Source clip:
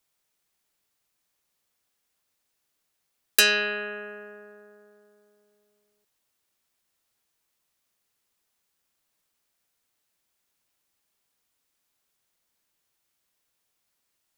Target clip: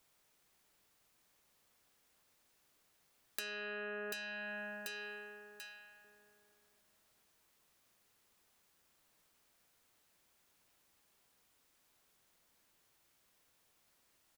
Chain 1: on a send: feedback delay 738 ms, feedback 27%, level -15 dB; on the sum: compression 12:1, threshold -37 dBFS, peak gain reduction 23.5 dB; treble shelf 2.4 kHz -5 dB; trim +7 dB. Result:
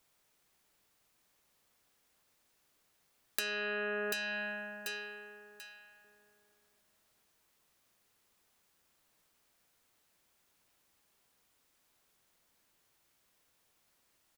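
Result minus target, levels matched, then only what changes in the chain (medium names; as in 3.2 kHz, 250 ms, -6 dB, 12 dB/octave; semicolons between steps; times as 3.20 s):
compression: peak gain reduction -7 dB
change: compression 12:1, threshold -44.5 dBFS, peak gain reduction 30.5 dB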